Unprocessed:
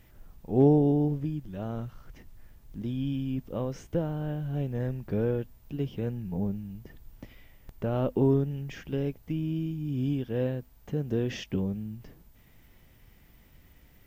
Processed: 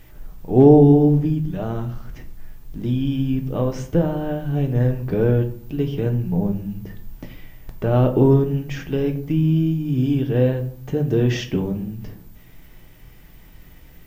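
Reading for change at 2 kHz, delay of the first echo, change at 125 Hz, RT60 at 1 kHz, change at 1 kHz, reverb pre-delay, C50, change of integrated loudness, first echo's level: +10.0 dB, none, +11.0 dB, 0.55 s, +11.0 dB, 3 ms, 12.0 dB, +10.5 dB, none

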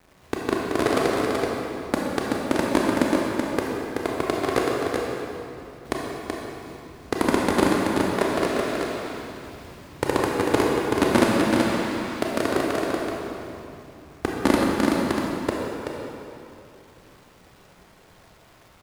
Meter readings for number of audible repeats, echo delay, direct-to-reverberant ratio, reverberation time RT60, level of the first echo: 1, 0.379 s, -4.0 dB, 2.8 s, -4.5 dB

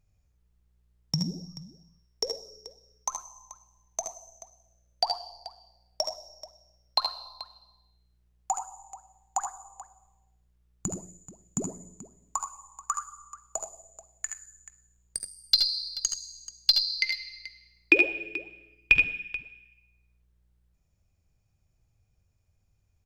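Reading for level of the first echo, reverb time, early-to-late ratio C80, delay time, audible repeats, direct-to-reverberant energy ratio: -7.5 dB, none, none, 72 ms, 2, none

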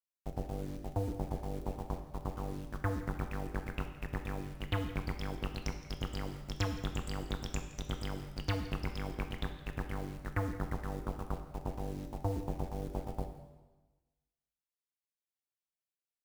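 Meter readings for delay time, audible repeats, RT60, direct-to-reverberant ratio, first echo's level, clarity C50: 0.167 s, 1, 1.2 s, 5.5 dB, -18.5 dB, 8.0 dB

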